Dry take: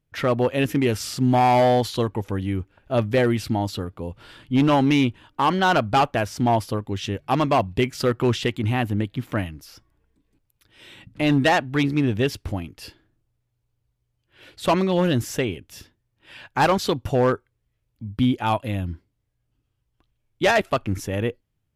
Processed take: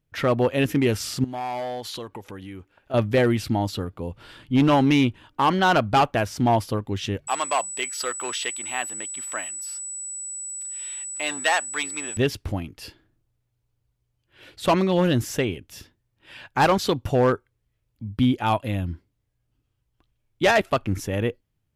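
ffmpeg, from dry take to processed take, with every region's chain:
ffmpeg -i in.wav -filter_complex "[0:a]asettb=1/sr,asplit=3[link_01][link_02][link_03];[link_01]atrim=end=1.244[link_04];[link_02]atrim=start=1.24:end=2.94,asetpts=PTS-STARTPTS,afade=type=in:duration=0.004:curve=qsin,afade=type=out:start_time=1.696:duration=0.004:curve=qsin,acompressor=threshold=-29dB:ratio=3:attack=3.2:release=140:knee=1:detection=peak,lowshelf=frequency=230:gain=-12[link_05];[link_03]atrim=start=2.936[link_06];[link_04][link_05]acrossfade=duration=0.004:curve1=hsin:curve2=qsin[link_07];[link_07][link_06]acrossfade=duration=0.004:curve1=qsin:curve2=hsin,asettb=1/sr,asplit=3[link_08][link_09][link_10];[link_08]atrim=end=7.274[link_11];[link_09]atrim=start=7.27:end=12.17,asetpts=PTS-STARTPTS,afade=type=in:duration=0.004:curve=qsin,afade=type=out:start_time=4.896:duration=0.004:curve=qsin,highpass=830,aeval=exprs='val(0)+0.0282*sin(2*PI*7900*n/s)':channel_layout=same[link_12];[link_10]atrim=start=12.166[link_13];[link_11][link_12]acrossfade=duration=0.004:curve1=hsin:curve2=qsin[link_14];[link_14][link_13]acrossfade=duration=0.004:curve1=qsin:curve2=hsin" out.wav

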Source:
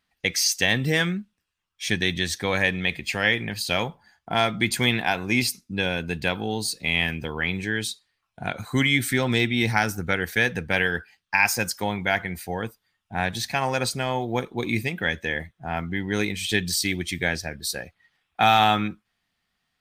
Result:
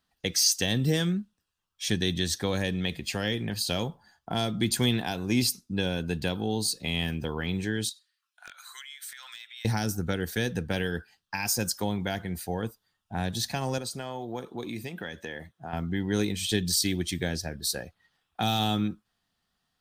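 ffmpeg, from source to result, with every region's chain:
ffmpeg -i in.wav -filter_complex "[0:a]asettb=1/sr,asplit=3[link_01][link_02][link_03];[link_01]atrim=end=7.894[link_04];[link_02]atrim=start=7.89:end=9.65,asetpts=PTS-STARTPTS,afade=type=in:duration=0.004:curve=qsin,afade=type=out:start_time=1.756:duration=0.004:curve=qsin,highpass=frequency=1400:width=0.5412,highpass=frequency=1400:width=1.3066,acompressor=threshold=-37dB:ratio=5:attack=3.2:release=140:knee=1:detection=peak,aeval=exprs='0.0398*(abs(mod(val(0)/0.0398+3,4)-2)-1)':channel_layout=same[link_05];[link_03]atrim=start=9.646[link_06];[link_04][link_05]acrossfade=duration=0.004:curve1=hsin:curve2=qsin[link_07];[link_07][link_06]acrossfade=duration=0.004:curve1=qsin:curve2=hsin,asettb=1/sr,asplit=3[link_08][link_09][link_10];[link_08]atrim=end=13.784[link_11];[link_09]atrim=start=13.78:end=15.73,asetpts=PTS-STARTPTS,afade=type=in:duration=0.004:curve=qsin,afade=type=out:start_time=1.946:duration=0.004:curve=qsin,highpass=frequency=160:poles=1,acompressor=threshold=-35dB:ratio=2:attack=3.2:release=140:knee=1:detection=peak[link_12];[link_10]atrim=start=15.726[link_13];[link_11][link_12]acrossfade=duration=0.004:curve1=hsin:curve2=qsin[link_14];[link_14][link_13]acrossfade=duration=0.004:curve1=qsin:curve2=hsin,equalizer=frequency=2200:width=2.5:gain=-10,acrossover=split=470|3000[link_15][link_16][link_17];[link_16]acompressor=threshold=-35dB:ratio=6[link_18];[link_15][link_18][link_17]amix=inputs=3:normalize=0" out.wav

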